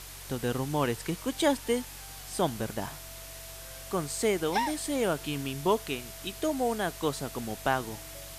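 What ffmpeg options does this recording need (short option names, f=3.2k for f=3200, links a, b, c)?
-af "bandreject=f=46.6:t=h:w=4,bandreject=f=93.2:t=h:w=4,bandreject=f=139.8:t=h:w=4,bandreject=f=660:w=30,afftdn=nr=30:nf=-44"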